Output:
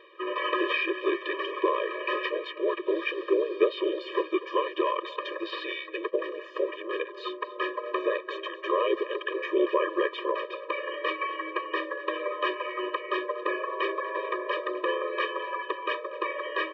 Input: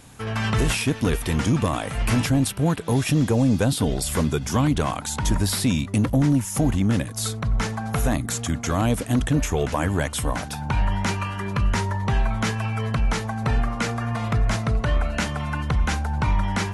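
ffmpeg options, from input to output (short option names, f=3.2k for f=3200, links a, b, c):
-filter_complex "[0:a]areverse,acompressor=mode=upward:threshold=-35dB:ratio=2.5,areverse,highpass=f=230:t=q:w=0.5412,highpass=f=230:t=q:w=1.307,lowpass=f=3.3k:t=q:w=0.5176,lowpass=f=3.3k:t=q:w=0.7071,lowpass=f=3.3k:t=q:w=1.932,afreqshift=-72,asplit=3[a][b][c];[b]asetrate=29433,aresample=44100,atempo=1.49831,volume=-9dB[d];[c]asetrate=37084,aresample=44100,atempo=1.18921,volume=-5dB[e];[a][d][e]amix=inputs=3:normalize=0,asplit=2[f][g];[g]adelay=239.1,volume=-16dB,highshelf=f=4k:g=-5.38[h];[f][h]amix=inputs=2:normalize=0,afftfilt=real='re*eq(mod(floor(b*sr/1024/320),2),1)':imag='im*eq(mod(floor(b*sr/1024/320),2),1)':win_size=1024:overlap=0.75,volume=2dB"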